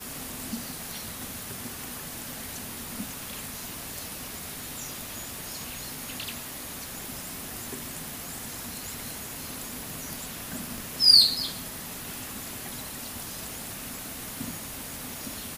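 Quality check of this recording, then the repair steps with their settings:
surface crackle 46 per second −39 dBFS
0:10.78: click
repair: click removal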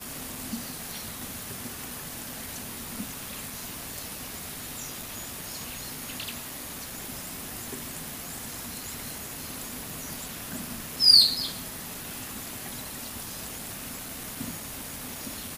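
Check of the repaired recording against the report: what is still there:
none of them is left

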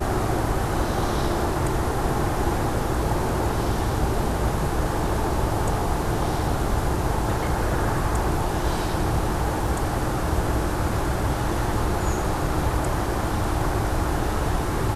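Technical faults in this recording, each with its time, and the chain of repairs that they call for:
0:09.67: drop-out 3.1 ms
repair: repair the gap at 0:09.67, 3.1 ms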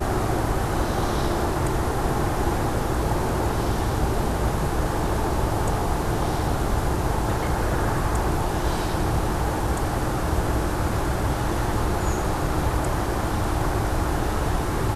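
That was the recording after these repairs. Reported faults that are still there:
none of them is left

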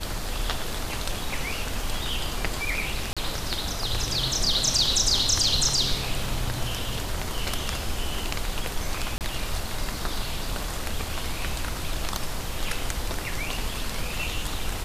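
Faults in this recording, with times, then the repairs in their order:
0:03.13–0:03.17: drop-out 36 ms
0:09.18–0:09.21: drop-out 28 ms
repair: repair the gap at 0:03.13, 36 ms
repair the gap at 0:09.18, 28 ms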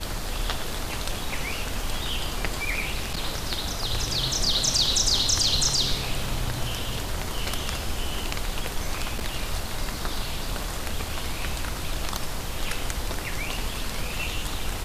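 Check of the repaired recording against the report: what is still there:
none of them is left

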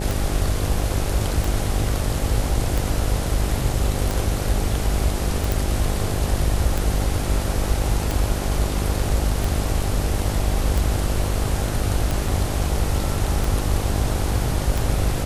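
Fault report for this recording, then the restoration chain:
mains buzz 50 Hz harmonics 16 −26 dBFS
scratch tick 45 rpm
0:05.52: click
0:12.28: drop-out 3.9 ms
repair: click removal
hum removal 50 Hz, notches 16
repair the gap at 0:12.28, 3.9 ms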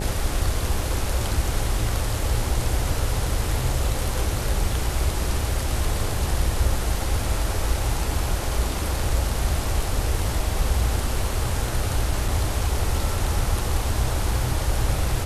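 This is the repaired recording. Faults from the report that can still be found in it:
none of them is left

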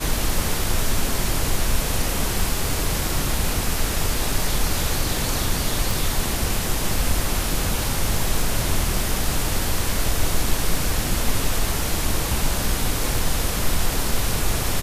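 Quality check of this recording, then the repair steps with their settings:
0:05.91: click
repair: click removal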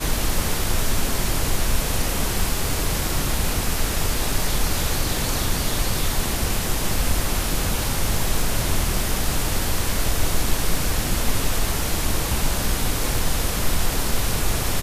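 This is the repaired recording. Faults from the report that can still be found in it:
none of them is left

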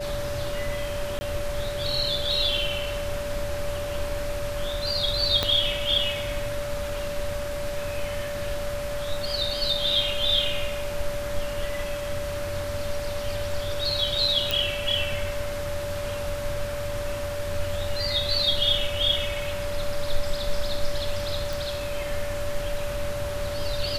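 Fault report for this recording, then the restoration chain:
whistle 580 Hz −30 dBFS
0:01.19–0:01.21: drop-out 20 ms
0:05.43: click −8 dBFS
0:14.51: click
0:21.53: click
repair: click removal
notch filter 580 Hz, Q 30
repair the gap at 0:01.19, 20 ms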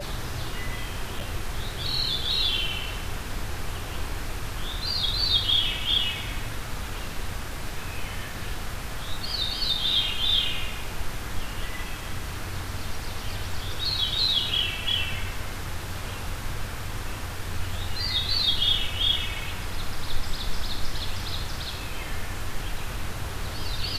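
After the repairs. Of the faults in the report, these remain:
0:05.43: click

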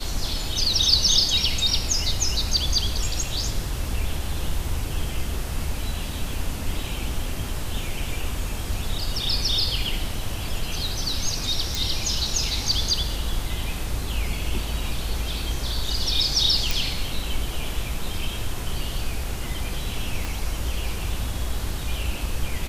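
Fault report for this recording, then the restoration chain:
0:11.75: click
0:16.71: click
0:20.25: click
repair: click removal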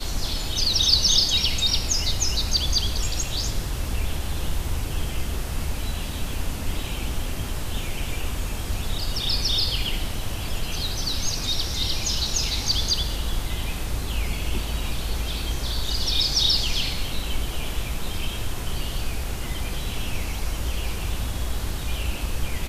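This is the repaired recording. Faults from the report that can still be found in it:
0:20.25: click

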